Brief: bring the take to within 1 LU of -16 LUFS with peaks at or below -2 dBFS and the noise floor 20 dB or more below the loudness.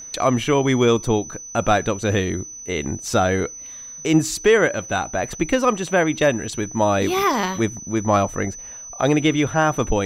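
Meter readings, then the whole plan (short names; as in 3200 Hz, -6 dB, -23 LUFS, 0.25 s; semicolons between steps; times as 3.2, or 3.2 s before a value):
ticks 42/s; steady tone 6000 Hz; tone level -34 dBFS; loudness -20.5 LUFS; peak -5.0 dBFS; loudness target -16.0 LUFS
-> de-click; notch 6000 Hz, Q 30; gain +4.5 dB; limiter -2 dBFS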